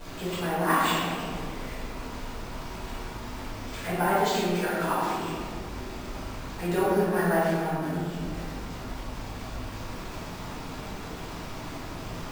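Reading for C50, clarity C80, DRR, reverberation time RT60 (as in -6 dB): -2.5 dB, 0.0 dB, -11.0 dB, 1.9 s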